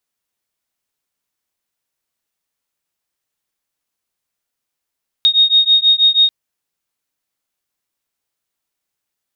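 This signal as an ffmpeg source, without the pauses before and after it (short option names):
-f lavfi -i "aevalsrc='0.251*(sin(2*PI*3720*t)+sin(2*PI*3726.2*t))':d=1.04:s=44100"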